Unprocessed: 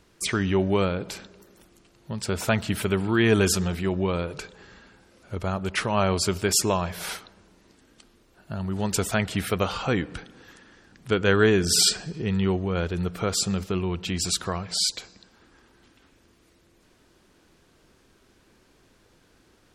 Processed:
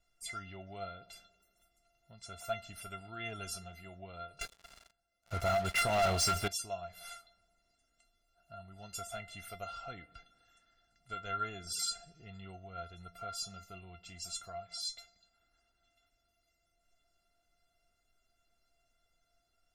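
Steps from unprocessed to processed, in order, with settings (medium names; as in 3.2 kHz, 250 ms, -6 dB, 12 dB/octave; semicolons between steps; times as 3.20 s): feedback comb 690 Hz, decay 0.16 s, harmonics all, mix 100%; 4.41–6.48 s: waveshaping leveller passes 5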